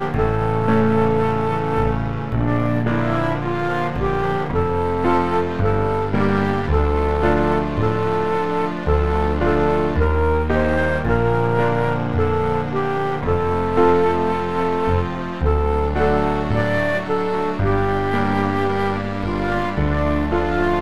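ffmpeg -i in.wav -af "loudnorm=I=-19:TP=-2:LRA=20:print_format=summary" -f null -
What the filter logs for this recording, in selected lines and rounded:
Input Integrated:    -19.8 LUFS
Input True Peak:      -2.4 dBTP
Input LRA:             1.4 LU
Input Threshold:     -29.8 LUFS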